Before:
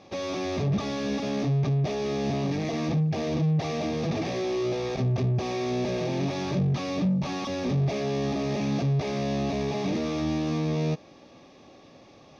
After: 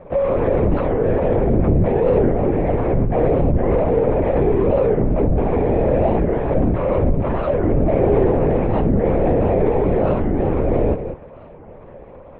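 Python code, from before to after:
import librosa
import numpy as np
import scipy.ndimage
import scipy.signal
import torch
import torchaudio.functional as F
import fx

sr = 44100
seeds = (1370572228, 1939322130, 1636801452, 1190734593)

y = scipy.signal.sosfilt(scipy.signal.butter(4, 2000.0, 'lowpass', fs=sr, output='sos'), x)
y = fx.peak_eq(y, sr, hz=510.0, db=9.5, octaves=1.1)
y = y + 10.0 ** (-11.0 / 20.0) * np.pad(y, (int(192 * sr / 1000.0), 0))[:len(y)]
y = fx.lpc_vocoder(y, sr, seeds[0], excitation='whisper', order=10)
y = fx.record_warp(y, sr, rpm=45.0, depth_cents=250.0)
y = y * librosa.db_to_amplitude(6.5)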